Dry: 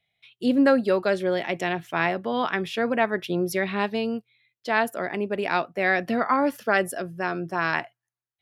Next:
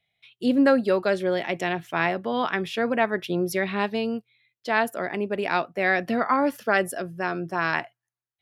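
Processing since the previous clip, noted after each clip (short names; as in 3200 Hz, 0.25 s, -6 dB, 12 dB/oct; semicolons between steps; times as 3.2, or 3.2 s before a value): nothing audible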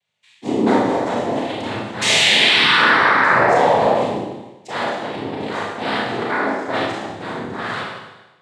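painted sound fall, 2.01–3.94, 480–3800 Hz -17 dBFS; noise vocoder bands 6; Schroeder reverb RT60 1.1 s, combs from 26 ms, DRR -4.5 dB; gain -3 dB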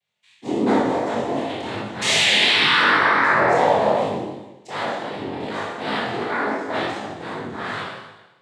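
chorus 2.7 Hz, delay 19 ms, depth 4.8 ms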